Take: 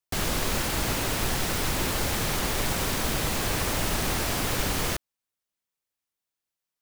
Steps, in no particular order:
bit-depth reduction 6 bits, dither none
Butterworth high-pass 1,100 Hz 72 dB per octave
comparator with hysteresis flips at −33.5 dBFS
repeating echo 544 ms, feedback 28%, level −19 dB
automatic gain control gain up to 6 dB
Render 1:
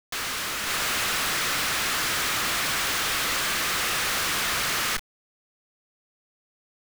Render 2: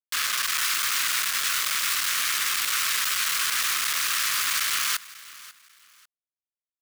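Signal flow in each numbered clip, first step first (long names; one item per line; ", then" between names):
Butterworth high-pass, then comparator with hysteresis, then automatic gain control, then repeating echo, then bit-depth reduction
automatic gain control, then comparator with hysteresis, then Butterworth high-pass, then bit-depth reduction, then repeating echo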